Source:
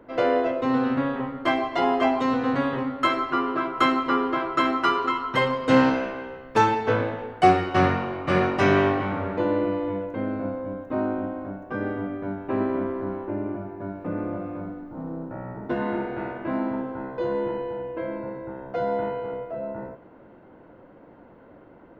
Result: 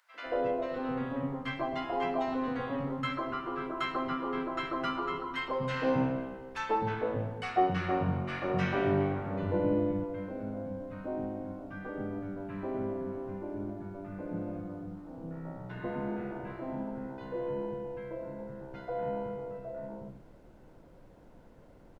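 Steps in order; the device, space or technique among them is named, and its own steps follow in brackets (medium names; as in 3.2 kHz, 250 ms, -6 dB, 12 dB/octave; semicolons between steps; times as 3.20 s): car interior (peaking EQ 160 Hz +6 dB 0.81 oct; treble shelf 4.6 kHz -7 dB; brown noise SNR 24 dB); 9.16–9.78 s: bass shelf 470 Hz +6.5 dB; three bands offset in time highs, mids, lows 140/260 ms, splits 270/1200 Hz; trim -8 dB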